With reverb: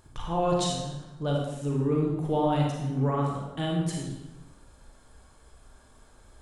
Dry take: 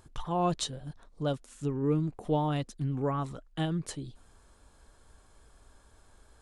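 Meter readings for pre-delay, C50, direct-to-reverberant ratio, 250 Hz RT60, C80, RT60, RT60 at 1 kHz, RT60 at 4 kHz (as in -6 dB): 33 ms, 1.0 dB, -2.0 dB, 1.2 s, 4.0 dB, 1.0 s, 1.0 s, 0.85 s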